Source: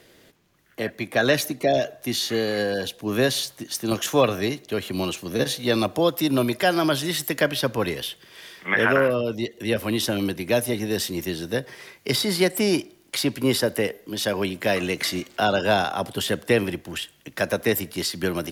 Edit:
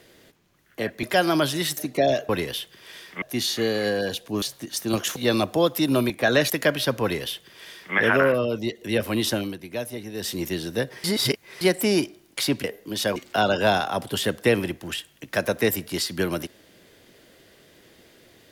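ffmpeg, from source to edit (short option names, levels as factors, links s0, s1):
-filter_complex "[0:a]asplit=15[s0][s1][s2][s3][s4][s5][s6][s7][s8][s9][s10][s11][s12][s13][s14];[s0]atrim=end=1.032[s15];[s1]atrim=start=6.518:end=7.262[s16];[s2]atrim=start=1.428:end=1.952[s17];[s3]atrim=start=7.778:end=8.712[s18];[s4]atrim=start=1.948:end=3.152[s19];[s5]atrim=start=3.398:end=4.142[s20];[s6]atrim=start=5.578:end=6.522[s21];[s7]atrim=start=1.028:end=1.432[s22];[s8]atrim=start=7.258:end=10.33,asetpts=PTS-STARTPTS,afade=t=out:st=2.862:d=0.21:c=qua:silence=0.354813[s23];[s9]atrim=start=10.33:end=10.87,asetpts=PTS-STARTPTS,volume=0.355[s24];[s10]atrim=start=10.87:end=11.802,asetpts=PTS-STARTPTS,afade=t=in:d=0.21:c=qua:silence=0.354813[s25];[s11]atrim=start=11.798:end=12.372,asetpts=PTS-STARTPTS,areverse[s26];[s12]atrim=start=12.368:end=13.402[s27];[s13]atrim=start=13.848:end=14.372[s28];[s14]atrim=start=15.198[s29];[s15][s16]acrossfade=d=0.004:c1=hsin:c2=hsin[s30];[s30][s17]acrossfade=d=0.004:c1=hsin:c2=hsin[s31];[s31][s18]acrossfade=d=0.004:c1=hsin:c2=hsin[s32];[s32][s19]acrossfade=d=0.004:c1=hsin:c2=hsin[s33];[s33][s20]acrossfade=d=0.004:c1=hsin:c2=hsin[s34];[s34][s21]acrossfade=d=0.004:c1=hsin:c2=hsin[s35];[s35][s22]acrossfade=d=0.004:c1=hsin:c2=hsin[s36];[s23][s24][s25]concat=n=3:v=0:a=1[s37];[s36][s37]acrossfade=d=0.004:c1=hsin:c2=hsin[s38];[s38][s26]acrossfade=d=0.004:c1=hsin:c2=hsin[s39];[s39][s27]acrossfade=d=0.004:c1=hsin:c2=hsin[s40];[s40][s28]acrossfade=d=0.004:c1=hsin:c2=hsin[s41];[s41][s29]acrossfade=d=0.004:c1=hsin:c2=hsin"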